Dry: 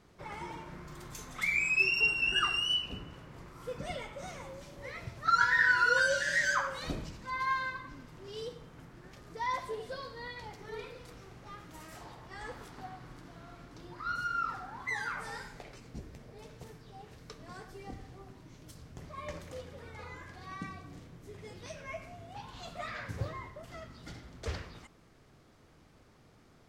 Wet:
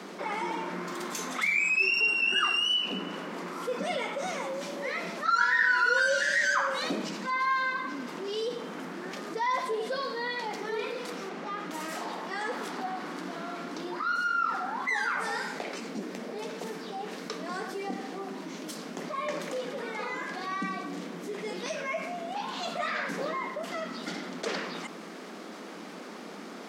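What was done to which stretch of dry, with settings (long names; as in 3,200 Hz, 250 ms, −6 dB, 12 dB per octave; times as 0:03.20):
0:11.29–0:11.71: low-pass filter 3,900 Hz 6 dB per octave
whole clip: Butterworth high-pass 180 Hz 96 dB per octave; high-shelf EQ 9,000 Hz −7 dB; envelope flattener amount 50%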